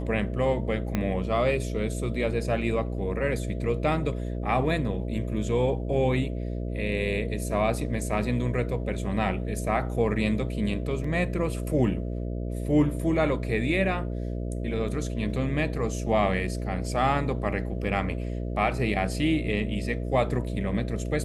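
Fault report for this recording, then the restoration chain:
mains buzz 60 Hz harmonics 11 −31 dBFS
0:00.95: click −13 dBFS
0:11.04: drop-out 4 ms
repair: click removal
hum removal 60 Hz, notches 11
repair the gap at 0:11.04, 4 ms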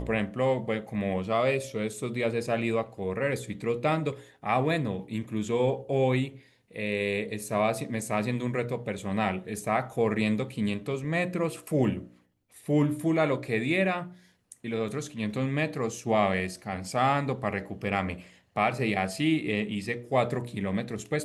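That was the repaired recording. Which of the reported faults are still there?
0:00.95: click

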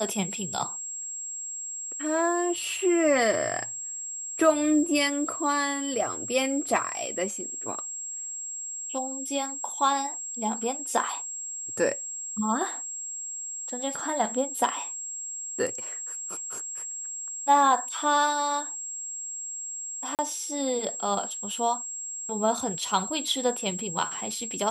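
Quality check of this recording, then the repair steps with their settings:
whistle 7,600 Hz −33 dBFS
0:20.15–0:20.19: drop-out 38 ms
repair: notch filter 7,600 Hz, Q 30
repair the gap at 0:20.15, 38 ms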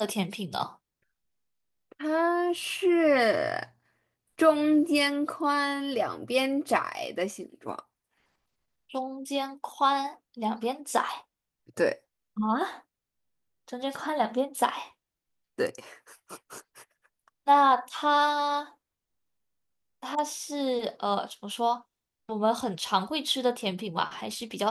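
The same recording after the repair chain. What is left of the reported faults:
none of them is left

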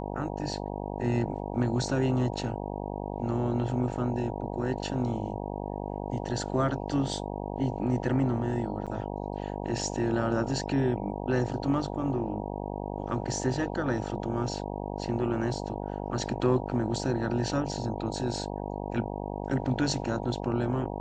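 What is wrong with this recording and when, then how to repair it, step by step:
mains buzz 50 Hz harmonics 19 −35 dBFS
0:08.86–0:08.87: drop-out 6.7 ms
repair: hum removal 50 Hz, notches 19
repair the gap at 0:08.86, 6.7 ms

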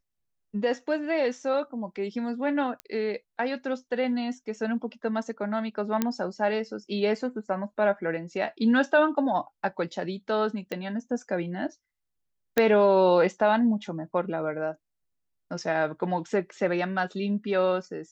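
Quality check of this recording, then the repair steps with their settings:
0:02.80: click −21 dBFS
0:06.02: click −10 dBFS
0:10.72: click −19 dBFS
0:12.58: click −8 dBFS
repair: click removal

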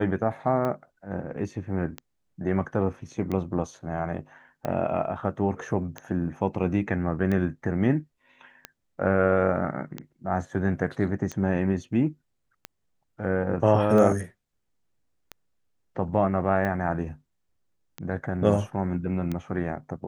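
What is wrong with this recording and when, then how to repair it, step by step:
scratch tick 45 rpm −18 dBFS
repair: click removal

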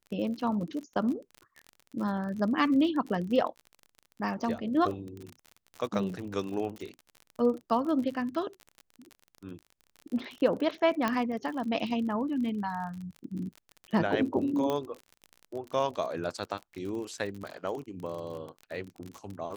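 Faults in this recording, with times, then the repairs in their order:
surface crackle 40 per second −36 dBFS
0:11.08: click −14 dBFS
0:14.70: click −18 dBFS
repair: click removal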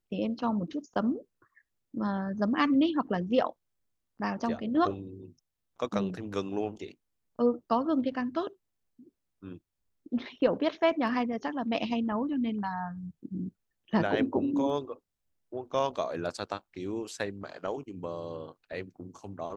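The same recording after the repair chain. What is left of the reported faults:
0:11.08: click
0:14.70: click

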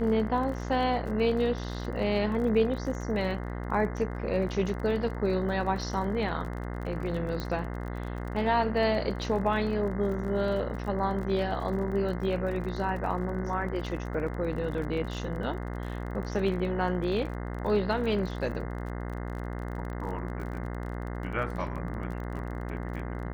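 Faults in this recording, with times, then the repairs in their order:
mains buzz 60 Hz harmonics 35 −35 dBFS
surface crackle 35 per second −37 dBFS
0:07.40: click −20 dBFS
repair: click removal
hum removal 60 Hz, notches 35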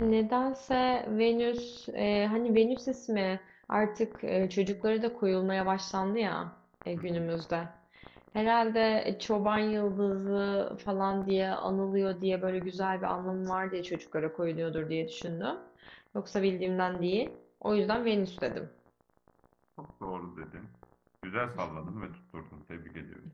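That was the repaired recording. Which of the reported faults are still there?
0:07.40: click

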